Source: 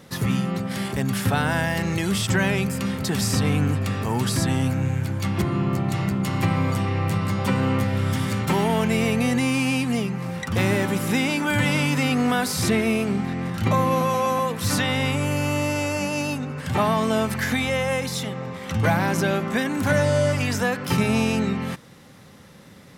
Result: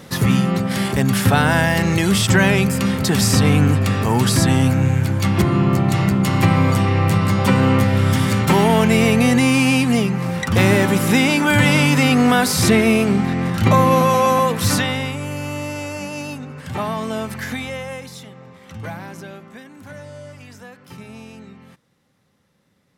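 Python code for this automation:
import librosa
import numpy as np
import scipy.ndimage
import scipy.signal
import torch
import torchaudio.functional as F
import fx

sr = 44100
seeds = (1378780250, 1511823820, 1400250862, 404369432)

y = fx.gain(x, sr, db=fx.line((14.62, 7.0), (15.15, -3.0), (17.53, -3.0), (18.27, -10.0), (18.83, -10.0), (19.69, -17.0)))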